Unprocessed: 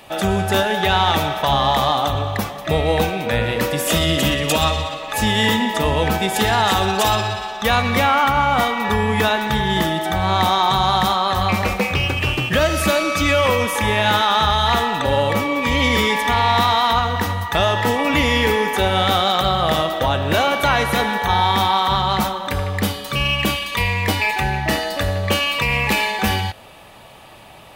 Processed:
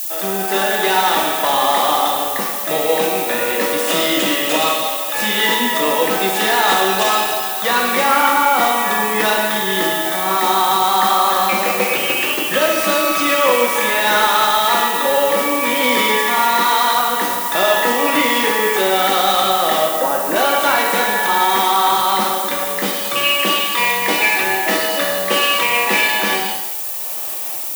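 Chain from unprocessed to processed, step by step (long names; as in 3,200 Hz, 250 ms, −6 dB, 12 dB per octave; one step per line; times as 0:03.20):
variable-slope delta modulation 64 kbit/s
0:19.84–0:20.36: low-pass filter 1,700 Hz 12 dB per octave
automatic gain control gain up to 9.5 dB
high-pass filter 260 Hz 24 dB per octave
reverb whose tail is shaped and stops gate 350 ms falling, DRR 0 dB
background noise violet −20 dBFS
level −4.5 dB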